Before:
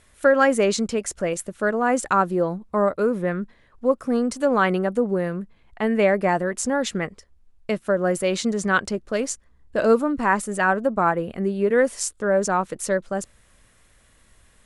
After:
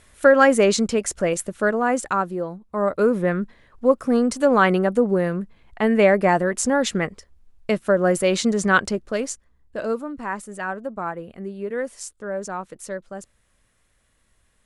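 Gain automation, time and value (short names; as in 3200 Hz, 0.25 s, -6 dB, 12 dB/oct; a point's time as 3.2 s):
1.56 s +3 dB
2.64 s -7.5 dB
2.99 s +3 dB
8.82 s +3 dB
9.98 s -8.5 dB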